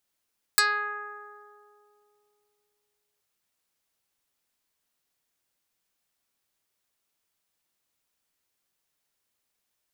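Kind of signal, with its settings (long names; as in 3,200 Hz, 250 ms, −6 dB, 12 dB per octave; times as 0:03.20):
Karplus-Strong string G#4, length 2.63 s, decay 3.04 s, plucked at 0.13, dark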